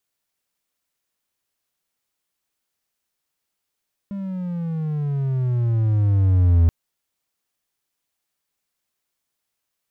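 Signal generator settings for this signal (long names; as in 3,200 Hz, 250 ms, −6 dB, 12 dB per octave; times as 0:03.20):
pitch glide with a swell triangle, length 2.58 s, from 201 Hz, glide −15.5 semitones, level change +15 dB, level −9 dB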